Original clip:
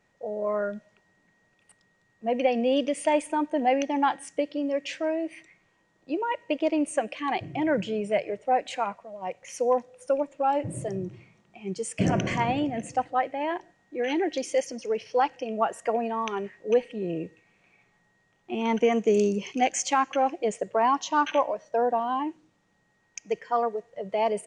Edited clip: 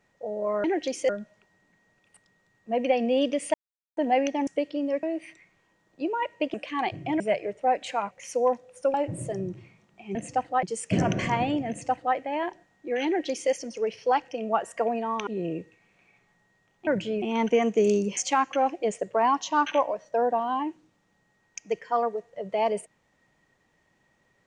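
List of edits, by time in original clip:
0:03.09–0:03.52: silence
0:04.02–0:04.28: remove
0:04.84–0:05.12: remove
0:06.63–0:07.03: remove
0:07.69–0:08.04: move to 0:18.52
0:08.95–0:09.36: remove
0:10.19–0:10.50: remove
0:12.76–0:13.24: duplicate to 0:11.71
0:14.14–0:14.59: duplicate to 0:00.64
0:16.35–0:16.92: remove
0:19.47–0:19.77: remove

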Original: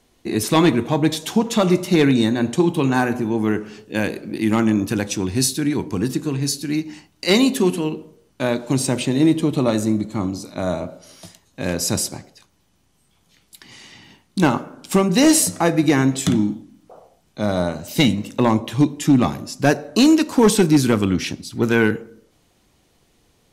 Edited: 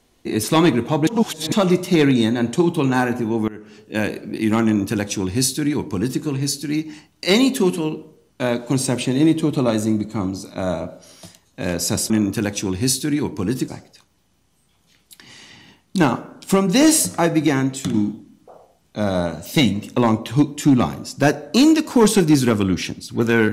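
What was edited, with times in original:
0:01.07–0:01.52: reverse
0:03.48–0:03.97: fade in, from −22.5 dB
0:04.64–0:06.22: duplicate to 0:12.10
0:15.71–0:16.36: fade out, to −6.5 dB

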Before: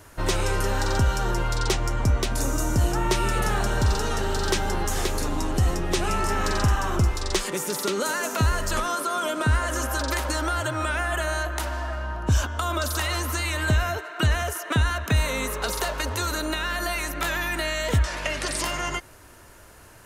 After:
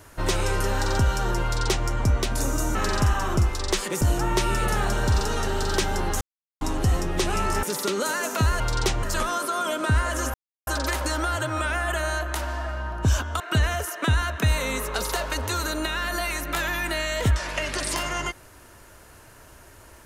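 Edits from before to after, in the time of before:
0:01.44–0:01.87: duplicate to 0:08.60
0:04.95–0:05.35: silence
0:06.37–0:07.63: move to 0:02.75
0:09.91: splice in silence 0.33 s
0:12.64–0:14.08: remove

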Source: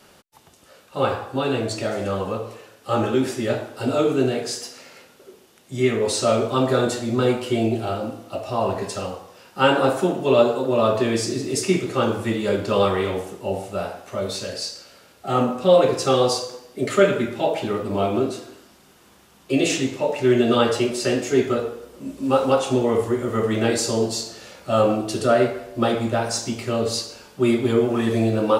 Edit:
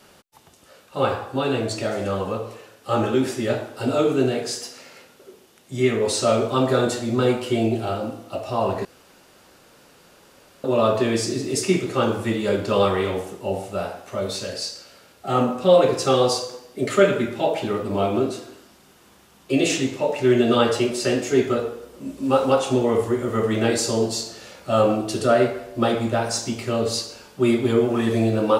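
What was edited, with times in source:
0:08.85–0:10.64: fill with room tone

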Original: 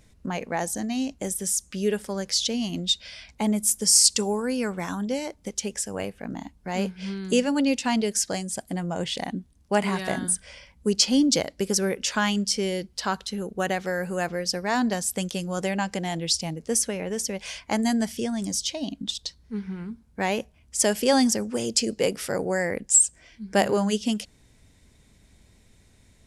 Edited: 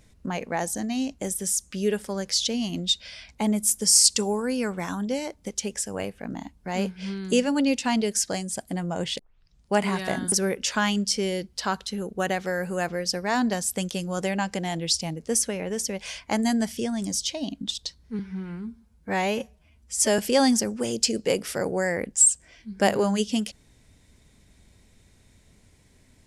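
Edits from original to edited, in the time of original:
0:09.19: tape start 0.53 s
0:10.32–0:11.72: remove
0:19.59–0:20.92: time-stretch 1.5×

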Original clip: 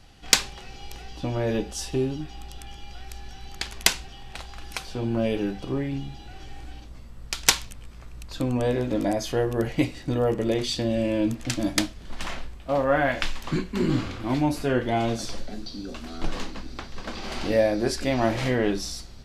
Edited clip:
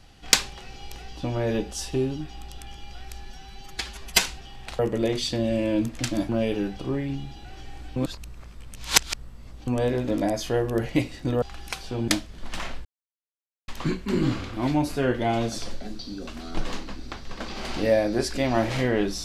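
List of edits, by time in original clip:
0:03.25–0:03.91: time-stretch 1.5×
0:04.46–0:05.12: swap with 0:10.25–0:11.75
0:06.79–0:08.50: reverse
0:12.52–0:13.35: silence

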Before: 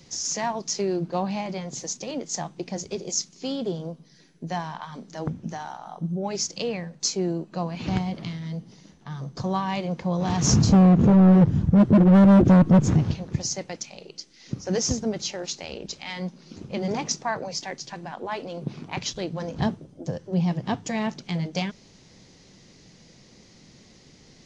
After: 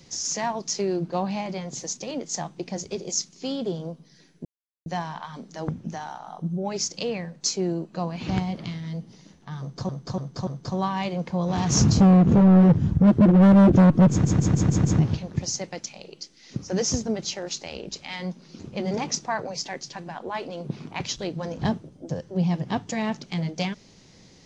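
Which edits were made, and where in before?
0:04.45: splice in silence 0.41 s
0:09.19–0:09.48: repeat, 4 plays
0:12.82: stutter 0.15 s, 6 plays

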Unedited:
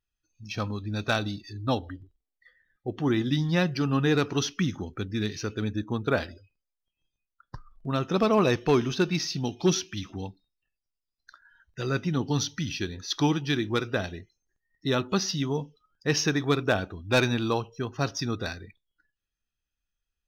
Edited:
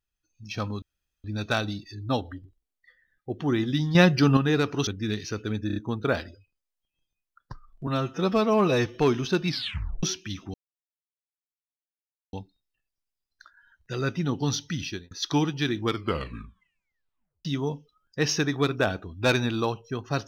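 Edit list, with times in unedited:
0:00.82: splice in room tone 0.42 s
0:03.53–0:03.95: clip gain +7 dB
0:04.45–0:04.99: remove
0:05.79: stutter 0.03 s, 4 plays
0:07.90–0:08.62: time-stretch 1.5×
0:09.15: tape stop 0.55 s
0:10.21: splice in silence 1.79 s
0:12.74–0:12.99: fade out
0:13.69: tape stop 1.64 s

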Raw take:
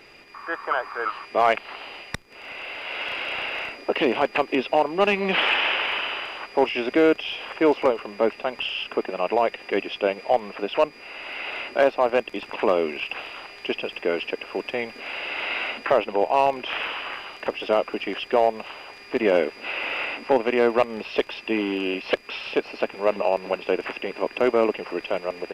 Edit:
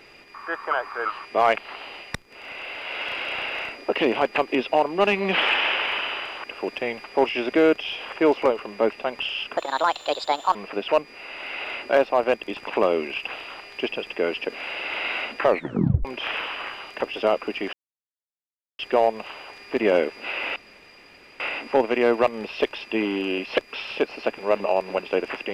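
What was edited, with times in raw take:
0:08.97–0:10.41: play speed 147%
0:14.36–0:14.96: move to 0:06.44
0:15.94: tape stop 0.57 s
0:18.19: splice in silence 1.06 s
0:19.96: splice in room tone 0.84 s

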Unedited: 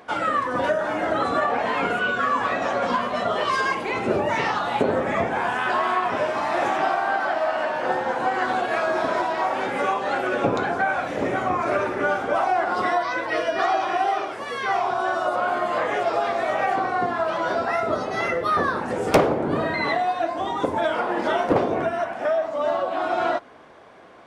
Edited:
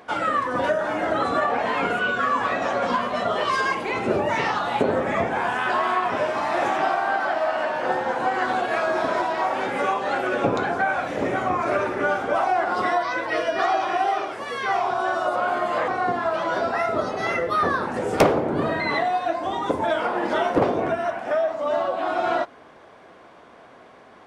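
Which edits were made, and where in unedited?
0:15.88–0:16.82: remove

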